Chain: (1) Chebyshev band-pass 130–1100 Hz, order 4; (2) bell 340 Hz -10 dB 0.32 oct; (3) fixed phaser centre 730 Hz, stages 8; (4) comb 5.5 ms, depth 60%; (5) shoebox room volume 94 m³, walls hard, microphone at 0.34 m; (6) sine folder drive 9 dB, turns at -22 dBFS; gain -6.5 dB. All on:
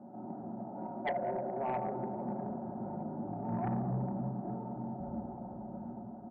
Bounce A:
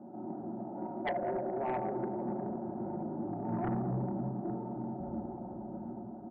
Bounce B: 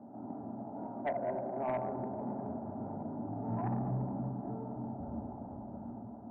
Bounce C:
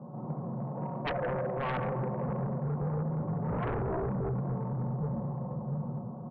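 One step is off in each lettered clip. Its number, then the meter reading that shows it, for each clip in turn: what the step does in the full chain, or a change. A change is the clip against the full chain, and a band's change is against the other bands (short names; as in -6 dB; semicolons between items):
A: 2, 1 kHz band -1.5 dB; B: 4, 2 kHz band -3.0 dB; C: 3, 125 Hz band +5.5 dB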